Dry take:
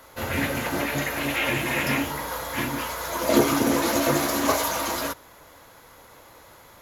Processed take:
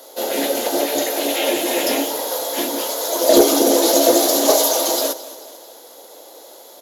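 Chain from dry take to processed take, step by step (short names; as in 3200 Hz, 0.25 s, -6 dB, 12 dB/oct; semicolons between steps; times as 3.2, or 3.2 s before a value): HPF 340 Hz 24 dB/oct; band shelf 1600 Hz -14.5 dB; in parallel at -8.5 dB: wavefolder -17.5 dBFS; on the sum: feedback echo 0.22 s, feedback 51%, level -17 dB; gain +8.5 dB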